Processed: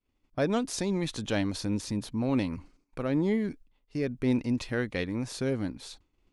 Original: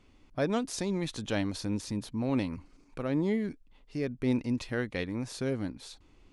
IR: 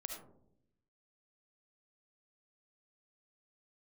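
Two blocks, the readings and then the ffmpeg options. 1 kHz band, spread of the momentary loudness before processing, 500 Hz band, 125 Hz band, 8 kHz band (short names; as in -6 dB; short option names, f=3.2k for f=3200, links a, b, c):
+1.5 dB, 12 LU, +2.0 dB, +2.0 dB, +2.5 dB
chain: -filter_complex "[0:a]agate=range=-33dB:threshold=-47dB:ratio=3:detection=peak,asplit=2[a][b];[b]asoftclip=type=tanh:threshold=-25dB,volume=-9dB[c];[a][c]amix=inputs=2:normalize=0"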